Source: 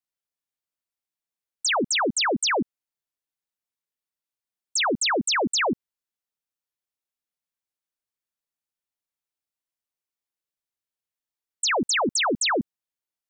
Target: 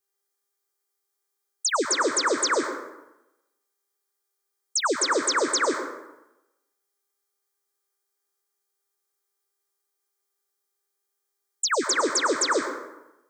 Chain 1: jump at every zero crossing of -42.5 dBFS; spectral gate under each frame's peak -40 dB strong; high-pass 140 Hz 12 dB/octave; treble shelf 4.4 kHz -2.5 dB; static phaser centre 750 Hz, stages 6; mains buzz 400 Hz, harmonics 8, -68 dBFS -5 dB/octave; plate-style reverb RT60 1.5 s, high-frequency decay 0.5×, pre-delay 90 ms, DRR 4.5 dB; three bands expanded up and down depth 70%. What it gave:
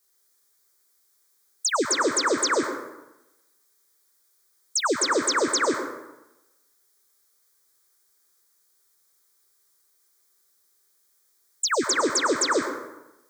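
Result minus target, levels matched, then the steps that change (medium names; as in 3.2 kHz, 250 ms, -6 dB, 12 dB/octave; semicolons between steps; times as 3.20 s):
125 Hz band +9.0 dB; jump at every zero crossing: distortion +8 dB
change: jump at every zero crossing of -51 dBFS; change: high-pass 290 Hz 12 dB/octave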